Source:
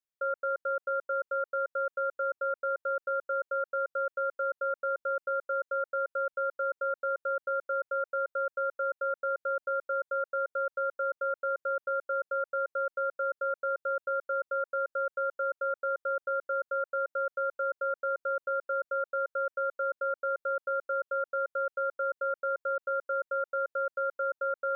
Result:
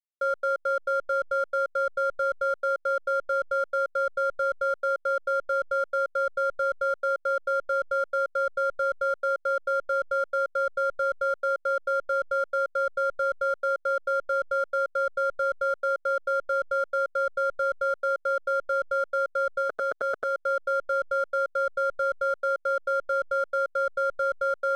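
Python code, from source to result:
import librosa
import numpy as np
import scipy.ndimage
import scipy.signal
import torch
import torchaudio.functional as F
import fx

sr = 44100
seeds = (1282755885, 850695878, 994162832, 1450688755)

y = fx.spec_clip(x, sr, under_db=22, at=(19.61, 20.33), fade=0.02)
y = fx.backlash(y, sr, play_db=-44.5)
y = F.gain(torch.from_numpy(y), 5.0).numpy()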